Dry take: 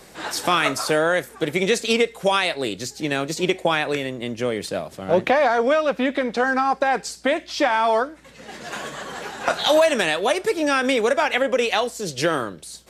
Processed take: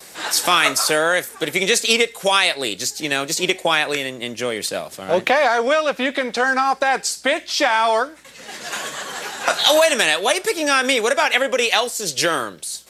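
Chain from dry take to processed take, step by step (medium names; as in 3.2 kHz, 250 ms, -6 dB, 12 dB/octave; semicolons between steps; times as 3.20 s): gate with hold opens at -38 dBFS; tilt EQ +2.5 dB/octave; trim +2.5 dB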